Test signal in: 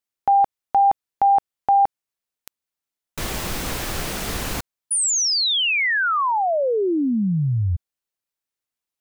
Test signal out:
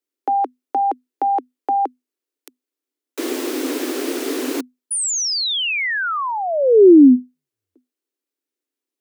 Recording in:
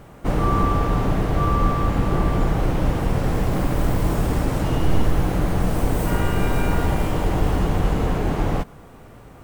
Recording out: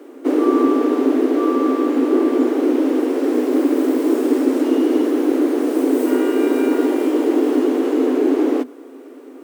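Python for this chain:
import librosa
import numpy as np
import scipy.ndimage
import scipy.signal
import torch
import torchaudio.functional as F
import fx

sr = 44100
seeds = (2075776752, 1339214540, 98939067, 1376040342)

y = scipy.signal.sosfilt(scipy.signal.ellip(8, 1.0, 80, 250.0, 'highpass', fs=sr, output='sos'), x)
y = fx.low_shelf_res(y, sr, hz=530.0, db=11.5, q=1.5)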